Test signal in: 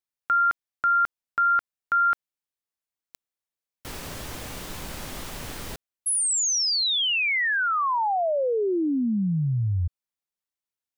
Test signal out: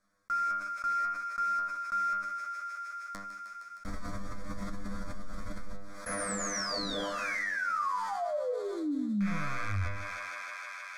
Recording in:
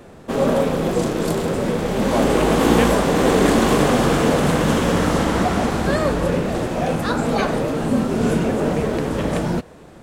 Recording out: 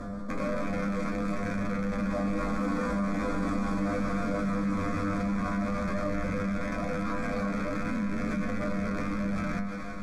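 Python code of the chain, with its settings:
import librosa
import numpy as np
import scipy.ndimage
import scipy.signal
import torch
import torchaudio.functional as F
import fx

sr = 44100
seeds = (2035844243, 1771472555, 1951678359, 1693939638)

p1 = fx.rattle_buzz(x, sr, strikes_db=-25.0, level_db=-8.0)
p2 = fx.low_shelf(p1, sr, hz=140.0, db=8.5)
p3 = fx.hum_notches(p2, sr, base_hz=60, count=8)
p4 = p3 + 0.38 * np.pad(p3, (int(0.9 * sr / 1000.0), 0))[:len(p3)]
p5 = fx.sample_hold(p4, sr, seeds[0], rate_hz=3900.0, jitter_pct=20)
p6 = p4 + F.gain(torch.from_numpy(p5), -6.0).numpy()
p7 = fx.air_absorb(p6, sr, metres=72.0)
p8 = fx.fixed_phaser(p7, sr, hz=570.0, stages=8)
p9 = fx.comb_fb(p8, sr, f0_hz=100.0, decay_s=0.38, harmonics='all', damping=0.5, mix_pct=100)
p10 = p9 + fx.echo_thinned(p9, sr, ms=155, feedback_pct=73, hz=420.0, wet_db=-19, dry=0)
p11 = fx.env_flatten(p10, sr, amount_pct=70)
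y = F.gain(torch.from_numpy(p11), -7.0).numpy()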